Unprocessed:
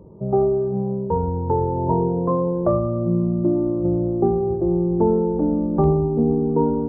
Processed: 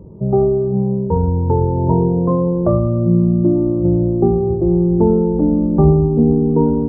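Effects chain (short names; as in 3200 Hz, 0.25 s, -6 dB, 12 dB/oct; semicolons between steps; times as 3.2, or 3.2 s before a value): low shelf 360 Hz +10.5 dB; gain -1 dB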